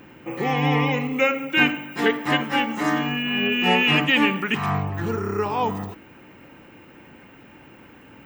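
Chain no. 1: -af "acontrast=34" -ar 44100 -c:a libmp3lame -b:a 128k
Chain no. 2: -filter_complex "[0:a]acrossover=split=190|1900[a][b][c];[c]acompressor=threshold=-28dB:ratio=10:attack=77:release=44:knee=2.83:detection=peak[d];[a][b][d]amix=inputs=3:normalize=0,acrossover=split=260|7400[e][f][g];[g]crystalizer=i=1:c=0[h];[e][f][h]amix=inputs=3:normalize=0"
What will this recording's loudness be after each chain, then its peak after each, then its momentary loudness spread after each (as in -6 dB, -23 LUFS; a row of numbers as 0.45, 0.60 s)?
-17.0, -21.5 LUFS; -3.0, -6.0 dBFS; 9, 8 LU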